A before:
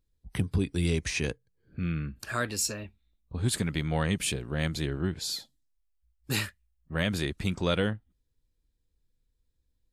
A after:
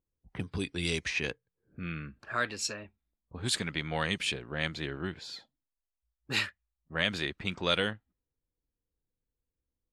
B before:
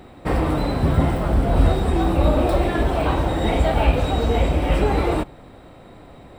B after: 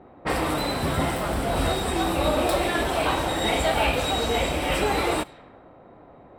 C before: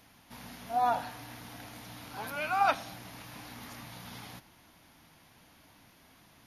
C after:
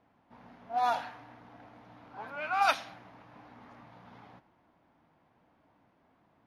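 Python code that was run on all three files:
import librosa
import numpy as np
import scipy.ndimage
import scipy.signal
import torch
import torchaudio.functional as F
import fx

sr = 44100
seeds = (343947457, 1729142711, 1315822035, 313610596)

y = fx.env_lowpass(x, sr, base_hz=750.0, full_db=-19.0)
y = fx.tilt_eq(y, sr, slope=3.0)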